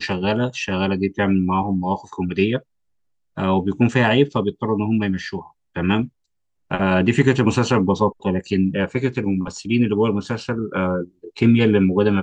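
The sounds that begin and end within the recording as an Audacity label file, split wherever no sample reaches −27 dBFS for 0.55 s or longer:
3.380000	6.050000	sound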